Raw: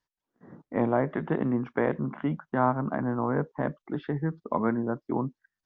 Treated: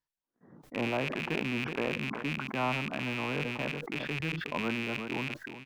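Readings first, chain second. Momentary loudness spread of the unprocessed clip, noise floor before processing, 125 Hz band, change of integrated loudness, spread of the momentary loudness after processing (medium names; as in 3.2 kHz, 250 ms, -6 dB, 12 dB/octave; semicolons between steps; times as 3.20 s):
6 LU, under -85 dBFS, -6.0 dB, -4.0 dB, 4 LU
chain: rattle on loud lows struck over -36 dBFS, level -16 dBFS; delay 374 ms -20 dB; decay stretcher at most 35 dB/s; trim -8 dB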